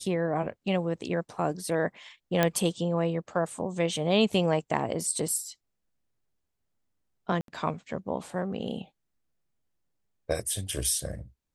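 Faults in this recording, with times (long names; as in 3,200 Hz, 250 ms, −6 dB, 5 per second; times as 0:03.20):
0:02.43: click −9 dBFS
0:07.41–0:07.48: drop-out 72 ms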